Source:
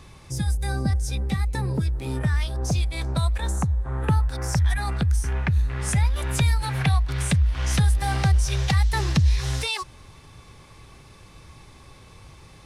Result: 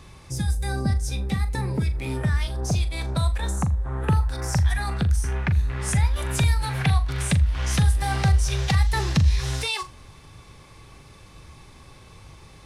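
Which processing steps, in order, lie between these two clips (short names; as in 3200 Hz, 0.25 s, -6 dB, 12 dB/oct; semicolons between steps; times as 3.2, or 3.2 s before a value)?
1.6–2.14 bell 2200 Hz +10 dB 0.46 oct; on a send: flutter echo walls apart 7 m, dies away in 0.22 s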